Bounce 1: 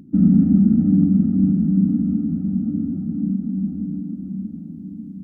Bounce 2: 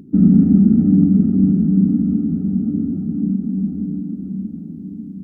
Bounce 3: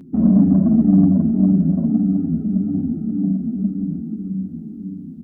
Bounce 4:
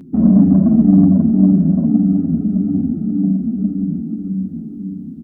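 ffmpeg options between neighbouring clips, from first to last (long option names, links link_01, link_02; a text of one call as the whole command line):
ffmpeg -i in.wav -af "equalizer=frequency=410:width_type=o:width=0.2:gain=15,volume=2.5dB" out.wav
ffmpeg -i in.wav -filter_complex "[0:a]acontrast=31,asplit=2[link_01][link_02];[link_02]adelay=8.4,afreqshift=-1.8[link_03];[link_01][link_03]amix=inputs=2:normalize=1,volume=-2.5dB" out.wav
ffmpeg -i in.wav -af "aecho=1:1:456|912|1368|1824|2280:0.15|0.0808|0.0436|0.0236|0.0127,volume=3dB" out.wav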